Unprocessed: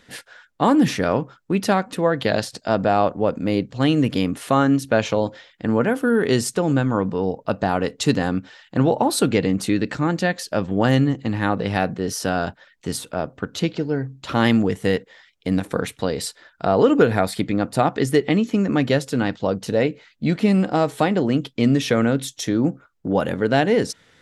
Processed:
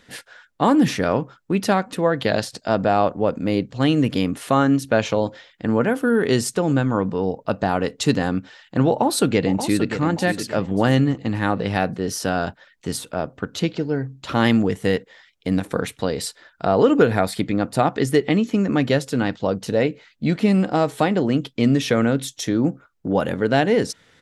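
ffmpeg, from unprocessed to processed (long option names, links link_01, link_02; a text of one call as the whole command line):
ffmpeg -i in.wav -filter_complex "[0:a]asplit=2[link_01][link_02];[link_02]afade=type=in:start_time=8.88:duration=0.01,afade=type=out:start_time=10.01:duration=0.01,aecho=0:1:580|1160|1740|2320:0.334965|0.117238|0.0410333|0.0143616[link_03];[link_01][link_03]amix=inputs=2:normalize=0" out.wav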